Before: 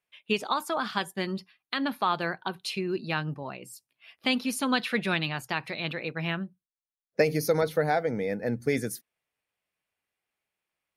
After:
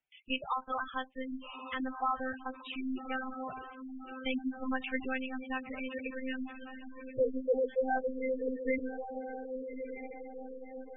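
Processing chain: monotone LPC vocoder at 8 kHz 260 Hz; bass shelf 64 Hz -10 dB; echo that smears into a reverb 1204 ms, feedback 56%, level -8 dB; spectral gate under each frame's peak -10 dB strong; trim -4 dB

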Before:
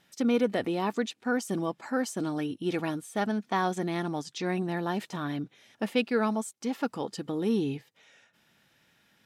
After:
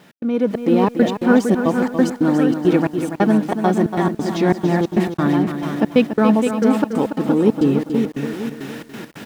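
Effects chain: jump at every zero crossing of -40.5 dBFS; feedback delay 470 ms, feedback 39%, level -7 dB; level rider gain up to 13 dB; high-pass 170 Hz 12 dB/octave; treble shelf 2.7 kHz -10 dB; trance gate "x.xxx.xx." 136 bpm -60 dB; bass shelf 370 Hz +7.5 dB; bit-crushed delay 285 ms, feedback 35%, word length 7-bit, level -8.5 dB; trim -2 dB

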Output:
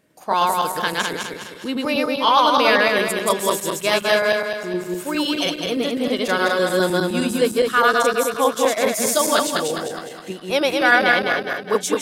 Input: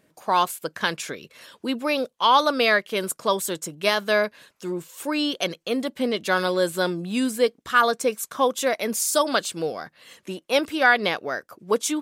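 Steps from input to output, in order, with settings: backward echo that repeats 103 ms, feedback 66%, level 0 dB

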